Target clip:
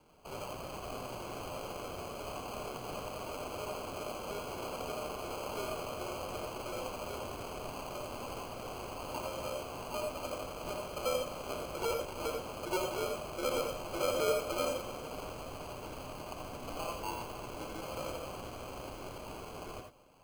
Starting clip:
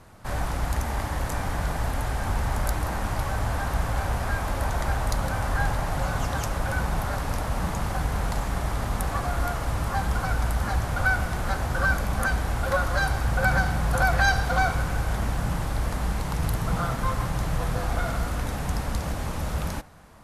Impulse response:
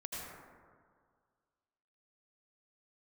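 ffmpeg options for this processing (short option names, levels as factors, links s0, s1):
-filter_complex "[0:a]highpass=f=220:t=q:w=0.5412,highpass=f=220:t=q:w=1.307,lowpass=f=3500:t=q:w=0.5176,lowpass=f=3500:t=q:w=0.7071,lowpass=f=3500:t=q:w=1.932,afreqshift=-180,acrusher=samples=24:mix=1:aa=0.000001[s0];[1:a]atrim=start_sample=2205,afade=t=out:st=0.14:d=0.01,atrim=end_sample=6615[s1];[s0][s1]afir=irnorm=-1:irlink=0,volume=0.596"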